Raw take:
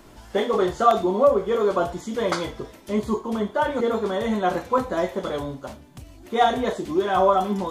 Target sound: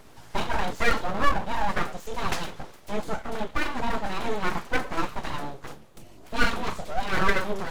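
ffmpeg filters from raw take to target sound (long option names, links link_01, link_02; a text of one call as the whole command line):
ffmpeg -i in.wav -af "aphaser=in_gain=1:out_gain=1:delay=4.6:decay=0.27:speed=1.4:type=triangular,aeval=exprs='abs(val(0))':channel_layout=same,volume=-1.5dB" out.wav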